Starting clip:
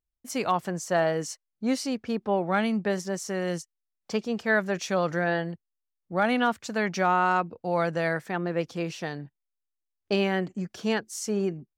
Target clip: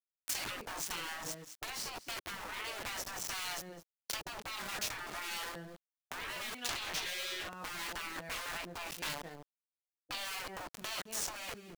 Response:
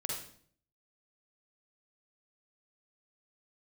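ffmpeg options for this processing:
-filter_complex "[0:a]asplit=2[s0][s1];[s1]adelay=23,volume=0.562[s2];[s0][s2]amix=inputs=2:normalize=0,bandreject=f=306.8:t=h:w=4,bandreject=f=613.6:t=h:w=4,bandreject=f=920.4:t=h:w=4,bandreject=f=1227.2:t=h:w=4,bandreject=f=1534:t=h:w=4,bandreject=f=1840.8:t=h:w=4,bandreject=f=2147.6:t=h:w=4,bandreject=f=2454.4:t=h:w=4,bandreject=f=2761.2:t=h:w=4,bandreject=f=3068:t=h:w=4,bandreject=f=3374.8:t=h:w=4,bandreject=f=3681.6:t=h:w=4,bandreject=f=3988.4:t=h:w=4,bandreject=f=4295.2:t=h:w=4,bandreject=f=4602:t=h:w=4,bandreject=f=4908.8:t=h:w=4,bandreject=f=5215.6:t=h:w=4,bandreject=f=5522.4:t=h:w=4,bandreject=f=5829.2:t=h:w=4,bandreject=f=6136:t=h:w=4,bandreject=f=6442.8:t=h:w=4,bandreject=f=6749.6:t=h:w=4,bandreject=f=7056.4:t=h:w=4,bandreject=f=7363.2:t=h:w=4,bandreject=f=7670:t=h:w=4,bandreject=f=7976.8:t=h:w=4,bandreject=f=8283.6:t=h:w=4,bandreject=f=8590.4:t=h:w=4,bandreject=f=8897.2:t=h:w=4,bandreject=f=9204:t=h:w=4,bandreject=f=9510.8:t=h:w=4,bandreject=f=9817.6:t=h:w=4,bandreject=f=10124.4:t=h:w=4,bandreject=f=10431.2:t=h:w=4,aeval=exprs='val(0)*gte(abs(val(0)),0.0251)':c=same,aecho=1:1:210:0.075,acrossover=split=1300[s3][s4];[s3]aeval=exprs='val(0)*(1-0.5/2+0.5/2*cos(2*PI*1.6*n/s))':c=same[s5];[s4]aeval=exprs='val(0)*(1-0.5/2-0.5/2*cos(2*PI*1.6*n/s))':c=same[s6];[s5][s6]amix=inputs=2:normalize=0,acompressor=threshold=0.00398:ratio=2,asoftclip=type=tanh:threshold=0.0178,asettb=1/sr,asplit=3[s7][s8][s9];[s7]atrim=end=6.584[s10];[s8]atrim=start=6.58:end=7.5,asetpts=PTS-STARTPTS,afade=t=in:d=0.004:c=qsin,afade=t=out:st=0.916:d=0.004:c=qsin,equalizer=f=3100:w=0.76:g=8[s11];[s9]atrim=start=7.496[s12];[s10][s11]acrossfade=d=0.004:c1=hsin:c2=qsin[s13];[s13][s12]acrossfade=d=0.004:c1=qsin:c2=hsin,afftfilt=real='re*lt(hypot(re,im),0.0112)':imag='im*lt(hypot(re,im),0.0112)':win_size=1024:overlap=0.75,volume=4.47"

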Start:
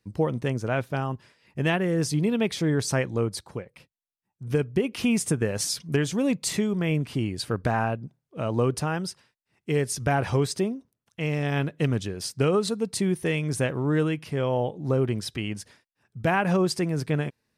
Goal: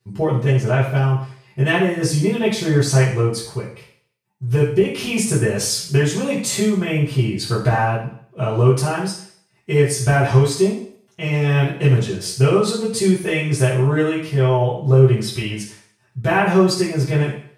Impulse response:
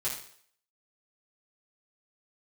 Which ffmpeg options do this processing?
-filter_complex "[1:a]atrim=start_sample=2205[s0];[0:a][s0]afir=irnorm=-1:irlink=0,volume=1.41"

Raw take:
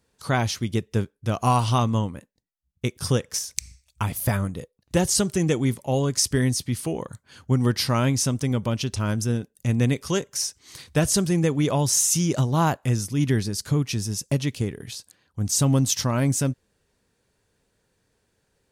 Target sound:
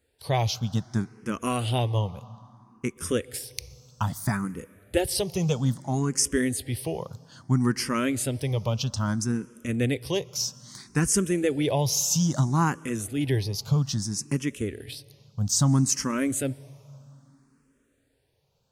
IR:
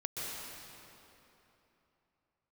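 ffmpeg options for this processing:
-filter_complex "[0:a]asplit=2[s0][s1];[1:a]atrim=start_sample=2205[s2];[s1][s2]afir=irnorm=-1:irlink=0,volume=0.0668[s3];[s0][s3]amix=inputs=2:normalize=0,asplit=2[s4][s5];[s5]afreqshift=0.61[s6];[s4][s6]amix=inputs=2:normalize=1"

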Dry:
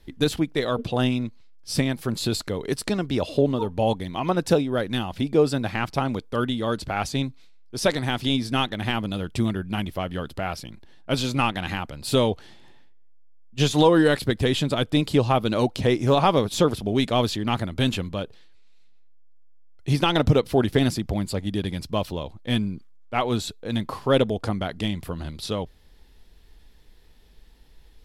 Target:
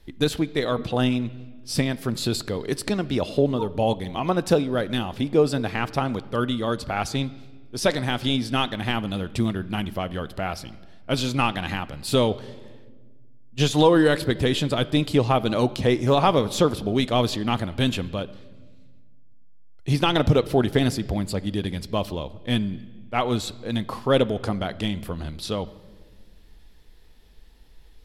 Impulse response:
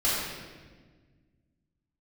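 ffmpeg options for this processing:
-filter_complex "[0:a]asplit=2[s0][s1];[1:a]atrim=start_sample=2205,lowpass=5900[s2];[s1][s2]afir=irnorm=-1:irlink=0,volume=0.0398[s3];[s0][s3]amix=inputs=2:normalize=0"

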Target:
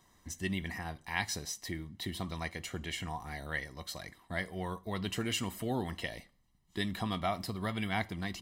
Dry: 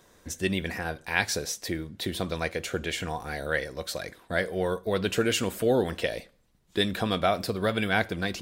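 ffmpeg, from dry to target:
-af "aecho=1:1:1:0.67,volume=0.376"

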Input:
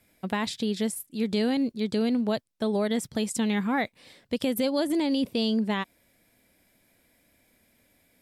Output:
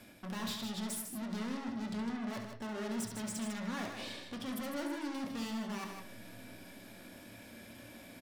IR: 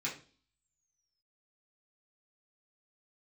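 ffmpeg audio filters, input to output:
-filter_complex "[0:a]lowpass=f=3500:p=1,bandreject=f=2000:w=5.3,areverse,acompressor=threshold=0.00891:ratio=4,areverse,aeval=exprs='(tanh(562*val(0)+0.35)-tanh(0.35))/562':c=same,aecho=1:1:69.97|154.5:0.398|0.447,asplit=2[s0][s1];[1:a]atrim=start_sample=2205,asetrate=34839,aresample=44100[s2];[s1][s2]afir=irnorm=-1:irlink=0,volume=0.501[s3];[s0][s3]amix=inputs=2:normalize=0,volume=4.47"

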